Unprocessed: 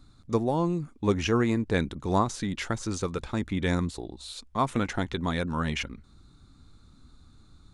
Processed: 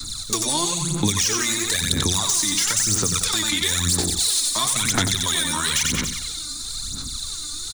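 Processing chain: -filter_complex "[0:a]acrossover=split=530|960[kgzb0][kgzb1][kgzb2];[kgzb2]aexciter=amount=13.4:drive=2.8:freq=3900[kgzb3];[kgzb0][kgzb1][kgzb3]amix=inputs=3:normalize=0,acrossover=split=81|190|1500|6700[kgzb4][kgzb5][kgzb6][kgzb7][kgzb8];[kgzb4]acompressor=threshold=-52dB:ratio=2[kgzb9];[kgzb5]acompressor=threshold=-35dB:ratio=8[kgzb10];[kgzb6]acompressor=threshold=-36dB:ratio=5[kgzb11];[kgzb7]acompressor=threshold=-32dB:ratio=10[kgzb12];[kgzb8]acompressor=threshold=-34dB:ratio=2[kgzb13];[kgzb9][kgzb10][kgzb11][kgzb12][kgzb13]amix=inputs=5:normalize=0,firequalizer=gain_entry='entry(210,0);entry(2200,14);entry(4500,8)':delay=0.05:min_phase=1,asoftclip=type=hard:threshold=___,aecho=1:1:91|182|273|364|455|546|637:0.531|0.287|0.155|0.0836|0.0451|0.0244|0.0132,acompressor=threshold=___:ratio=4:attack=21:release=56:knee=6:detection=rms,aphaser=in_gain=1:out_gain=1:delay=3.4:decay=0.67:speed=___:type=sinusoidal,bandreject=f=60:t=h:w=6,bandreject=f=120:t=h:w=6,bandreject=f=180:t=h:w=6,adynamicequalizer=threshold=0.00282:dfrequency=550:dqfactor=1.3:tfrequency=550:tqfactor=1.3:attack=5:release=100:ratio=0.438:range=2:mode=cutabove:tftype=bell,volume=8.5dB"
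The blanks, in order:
-18.5dB, -33dB, 1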